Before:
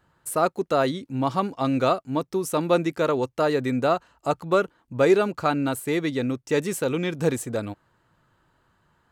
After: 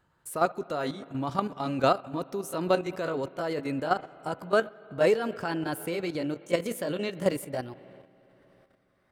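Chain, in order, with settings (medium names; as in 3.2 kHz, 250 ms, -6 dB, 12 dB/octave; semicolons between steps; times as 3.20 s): pitch bend over the whole clip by +3.5 st starting unshifted; spring tank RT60 3.5 s, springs 55/59 ms, chirp 70 ms, DRR 16.5 dB; level held to a coarse grid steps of 10 dB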